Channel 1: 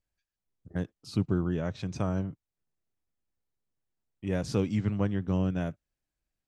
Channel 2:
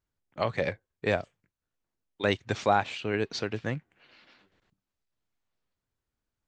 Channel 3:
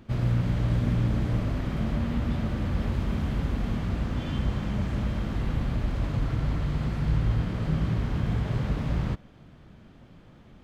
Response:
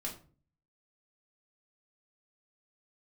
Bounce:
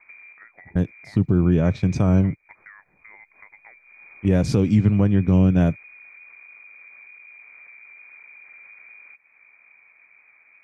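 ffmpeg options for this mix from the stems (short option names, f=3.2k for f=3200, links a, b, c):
-filter_complex "[0:a]agate=range=-11dB:threshold=-39dB:ratio=16:detection=peak,lowshelf=f=470:g=8.5,dynaudnorm=f=340:g=5:m=8.5dB,volume=1dB[a];[1:a]lowpass=f=3.1k:w=0.5412,lowpass=f=3.1k:w=1.3066,equalizer=f=73:w=0.36:g=-6.5,acompressor=mode=upward:threshold=-32dB:ratio=2.5,volume=-7.5dB,asplit=2[b][c];[2:a]asoftclip=type=tanh:threshold=-27.5dB,volume=-3.5dB[d];[c]apad=whole_len=469030[e];[d][e]sidechaincompress=threshold=-56dB:ratio=8:attack=5.7:release=390[f];[b][f]amix=inputs=2:normalize=0,lowpass=f=2.1k:t=q:w=0.5098,lowpass=f=2.1k:t=q:w=0.6013,lowpass=f=2.1k:t=q:w=0.9,lowpass=f=2.1k:t=q:w=2.563,afreqshift=-2500,acompressor=threshold=-44dB:ratio=8,volume=0dB[g];[a][g]amix=inputs=2:normalize=0,alimiter=limit=-8dB:level=0:latency=1:release=142"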